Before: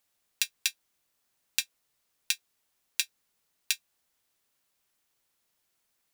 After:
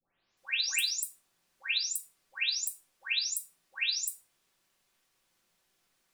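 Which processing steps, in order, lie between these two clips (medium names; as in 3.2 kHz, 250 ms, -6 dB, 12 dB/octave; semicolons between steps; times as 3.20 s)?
delay that grows with frequency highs late, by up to 371 ms; treble shelf 10 kHz -11 dB; simulated room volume 510 m³, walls furnished, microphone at 1.1 m; trim +5.5 dB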